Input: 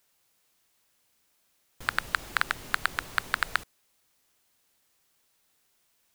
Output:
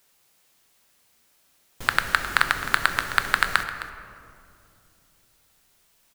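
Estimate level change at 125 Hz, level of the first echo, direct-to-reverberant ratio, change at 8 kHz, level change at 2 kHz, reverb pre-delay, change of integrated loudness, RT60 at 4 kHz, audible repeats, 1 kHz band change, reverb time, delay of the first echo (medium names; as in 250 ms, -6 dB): +7.5 dB, -14.5 dB, 7.0 dB, +7.0 dB, +7.0 dB, 5 ms, +7.0 dB, 1.3 s, 1, +7.5 dB, 2.6 s, 262 ms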